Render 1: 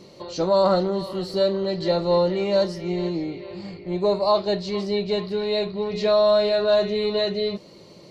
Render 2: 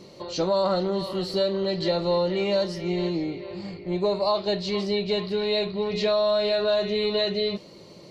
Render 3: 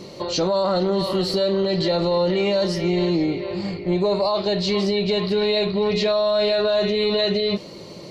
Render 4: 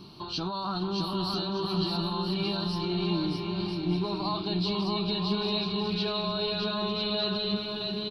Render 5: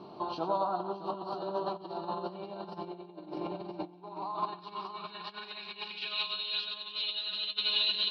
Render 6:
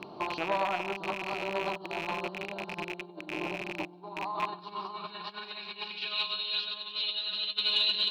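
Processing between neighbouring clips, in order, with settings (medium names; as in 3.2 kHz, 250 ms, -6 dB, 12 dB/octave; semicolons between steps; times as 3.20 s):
dynamic bell 3 kHz, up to +5 dB, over -44 dBFS, Q 1.1; compression 3:1, threshold -21 dBFS, peak gain reduction 6 dB
peak limiter -21.5 dBFS, peak gain reduction 9 dB; trim +8.5 dB
static phaser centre 2 kHz, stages 6; on a send: bouncing-ball echo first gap 620 ms, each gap 0.6×, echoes 5; on the sum: trim -5.5 dB
filtered feedback delay 96 ms, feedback 63%, low-pass 4.5 kHz, level -7 dB; compressor with a negative ratio -33 dBFS, ratio -0.5; band-pass sweep 640 Hz -> 3.1 kHz, 3.70–6.43 s; trim +7 dB
rattle on loud lows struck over -48 dBFS, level -25 dBFS; transformer saturation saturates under 1.2 kHz; trim +2 dB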